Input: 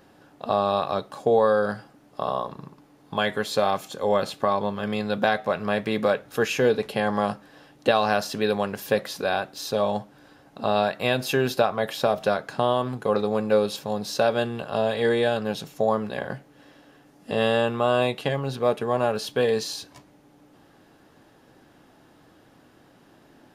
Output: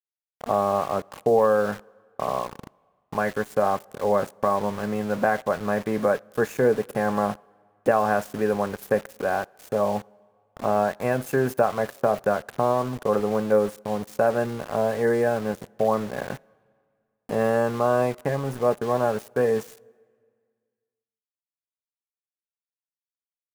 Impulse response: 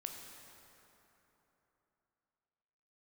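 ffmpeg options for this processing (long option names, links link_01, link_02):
-filter_complex "[0:a]asuperstop=centerf=3700:order=4:qfactor=0.69,aeval=exprs='val(0)*gte(abs(val(0)),0.0178)':channel_layout=same,asplit=2[link_01][link_02];[1:a]atrim=start_sample=2205,asetrate=74970,aresample=44100[link_03];[link_02][link_03]afir=irnorm=-1:irlink=0,volume=-16dB[link_04];[link_01][link_04]amix=inputs=2:normalize=0"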